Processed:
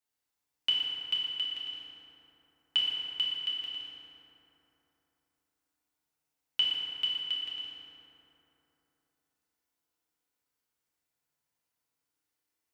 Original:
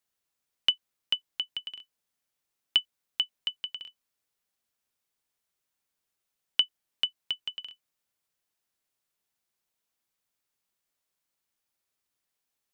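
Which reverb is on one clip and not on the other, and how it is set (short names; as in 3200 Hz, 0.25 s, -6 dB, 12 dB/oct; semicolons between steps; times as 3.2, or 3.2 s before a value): FDN reverb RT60 3.4 s, high-frequency decay 0.45×, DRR -6.5 dB; gain -8 dB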